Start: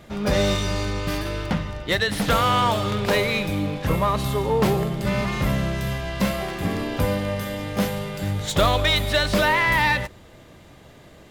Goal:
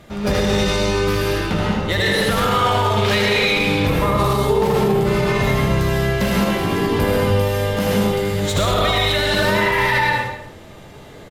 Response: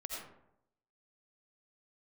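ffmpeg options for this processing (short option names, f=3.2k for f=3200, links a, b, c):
-filter_complex "[0:a]asettb=1/sr,asplit=3[a][b][c];[a]atrim=end=2.964[d];[b]atrim=start=2.96:end=3.83,asetpts=PTS-STARTPTS,afade=t=in:d=0.004:c=qsin,afade=t=out:st=0.866:d=0.004:c=qsin,equalizer=f=3.4k:w=0.49:g=9[e];[c]atrim=start=3.826[f];[d][e]acrossfade=d=0.004:c1=hsin:c2=qsin[g];[g][f]acrossfade=d=0.004:c1=qsin:c2=hsin,aecho=1:1:78|269:0.562|0.112[h];[1:a]atrim=start_sample=2205,afade=t=out:st=0.27:d=0.01,atrim=end_sample=12348,asetrate=29547,aresample=44100[i];[h][i]afir=irnorm=-1:irlink=0,alimiter=level_in=12dB:limit=-1dB:release=50:level=0:latency=1,volume=-7.5dB"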